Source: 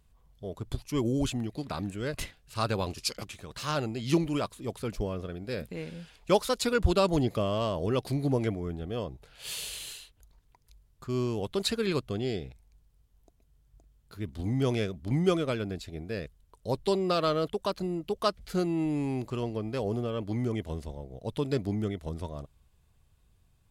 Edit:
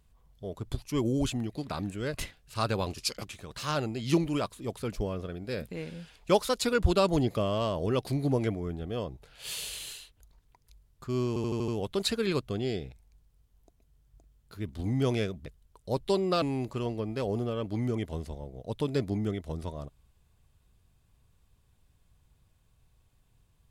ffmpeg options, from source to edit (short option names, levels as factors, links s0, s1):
-filter_complex "[0:a]asplit=8[s0][s1][s2][s3][s4][s5][s6][s7];[s0]atrim=end=11.362[s8];[s1]atrim=start=11.278:end=11.362[s9];[s2]atrim=start=11.278:end=11.362[s10];[s3]atrim=start=11.278:end=11.362[s11];[s4]atrim=start=11.278:end=11.362[s12];[s5]atrim=start=11.278:end=15.062[s13];[s6]atrim=start=16.238:end=17.202[s14];[s7]atrim=start=18.988[s15];[s8][s9]acrossfade=d=0.004:c1=hsin:c2=hsin[s16];[s16][s10]acrossfade=d=0.004:c1=hsin:c2=hsin[s17];[s17][s11]acrossfade=d=0.004:c1=hsin:c2=hsin[s18];[s18][s12]acrossfade=d=0.004:c1=hsin:c2=hsin[s19];[s19][s13]acrossfade=d=0.004:c1=hsin:c2=hsin[s20];[s20][s14]acrossfade=d=0.004:c1=hsin:c2=hsin[s21];[s21][s15]acrossfade=d=0.004:c1=hsin:c2=hsin"